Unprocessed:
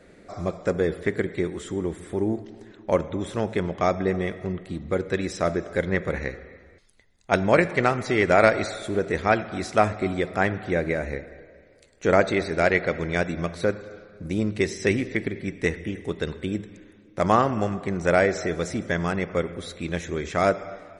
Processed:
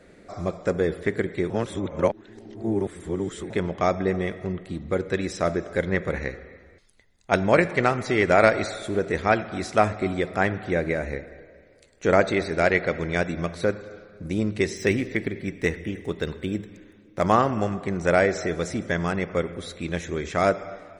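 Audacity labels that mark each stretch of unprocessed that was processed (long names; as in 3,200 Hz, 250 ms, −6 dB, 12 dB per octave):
1.500000	3.500000	reverse
14.770000	17.400000	running median over 3 samples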